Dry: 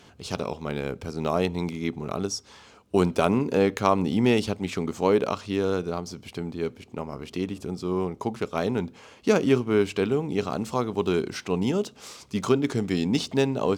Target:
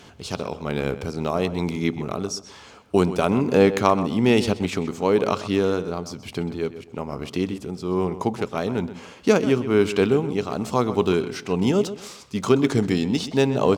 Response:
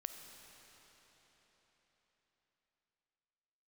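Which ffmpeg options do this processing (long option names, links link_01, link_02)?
-filter_complex "[0:a]tremolo=f=1.1:d=0.44,asplit=2[link_01][link_02];[link_02]adelay=128,lowpass=frequency=4100:poles=1,volume=-13dB,asplit=2[link_03][link_04];[link_04]adelay=128,lowpass=frequency=4100:poles=1,volume=0.28,asplit=2[link_05][link_06];[link_06]adelay=128,lowpass=frequency=4100:poles=1,volume=0.28[link_07];[link_01][link_03][link_05][link_07]amix=inputs=4:normalize=0,volume=5.5dB"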